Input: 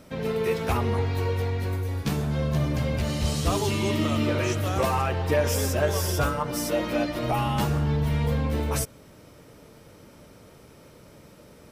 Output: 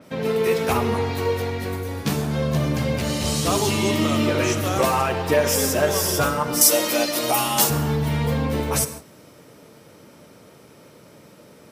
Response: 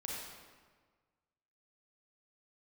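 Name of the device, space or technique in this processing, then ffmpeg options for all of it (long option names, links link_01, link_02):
keyed gated reverb: -filter_complex "[0:a]asettb=1/sr,asplit=3[link_01][link_02][link_03];[link_01]atrim=end=6.614[link_04];[link_02]atrim=start=6.61:end=7.7,asetpts=PTS-STARTPTS,afade=type=in:duration=0.004:curve=qsin,afade=type=out:start_time=1.086:duration=0.004:curve=qsin,bass=frequency=250:gain=-11,treble=frequency=4000:gain=14[link_05];[link_03]atrim=start=7.696[link_06];[link_04][link_05]acrossfade=duration=0.004:curve1=hsin:curve2=qsin[link_07];[link_07][link_06]acrossfade=duration=0.004:curve1=qsin:curve2=hsin,highpass=130,asplit=3[link_08][link_09][link_10];[1:a]atrim=start_sample=2205[link_11];[link_09][link_11]afir=irnorm=-1:irlink=0[link_12];[link_10]apad=whole_len=516709[link_13];[link_12][link_13]sidechaingate=range=-33dB:threshold=-45dB:ratio=16:detection=peak,volume=-8dB[link_14];[link_08][link_14]amix=inputs=2:normalize=0,adynamicequalizer=threshold=0.01:dfrequency=4500:dqfactor=0.7:tfrequency=4500:tqfactor=0.7:attack=5:release=100:ratio=0.375:range=2:mode=boostabove:tftype=highshelf,volume=3dB"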